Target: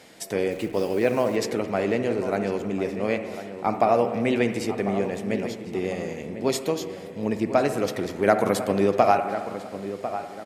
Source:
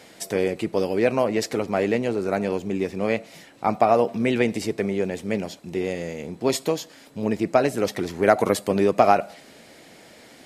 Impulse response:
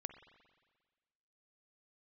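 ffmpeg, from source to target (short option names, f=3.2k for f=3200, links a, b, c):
-filter_complex "[0:a]asettb=1/sr,asplit=3[a][b][c];[a]atrim=end=0.514[d];[b]atrim=start=0.51:end=1.36,asetpts=PTS-STARTPTS,afade=t=in:d=0.004:c=qsin,afade=t=out:st=0.846:d=0.004:c=qsin,acrusher=bits=8:dc=4:mix=0:aa=0.000001[e];[c]atrim=start=1.356[f];[d][e]acrossfade=d=0.004:c1=hsin:c2=qsin[g];[g][f]acrossfade=d=0.004:c1=qsin:c2=hsin,asplit=2[h][i];[i]adelay=1048,lowpass=f=2.1k:p=1,volume=-11dB,asplit=2[j][k];[k]adelay=1048,lowpass=f=2.1k:p=1,volume=0.33,asplit=2[l][m];[m]adelay=1048,lowpass=f=2.1k:p=1,volume=0.33,asplit=2[n][o];[o]adelay=1048,lowpass=f=2.1k:p=1,volume=0.33[p];[h][j][l][n][p]amix=inputs=5:normalize=0[q];[1:a]atrim=start_sample=2205,asetrate=38808,aresample=44100[r];[q][r]afir=irnorm=-1:irlink=0,volume=1.5dB"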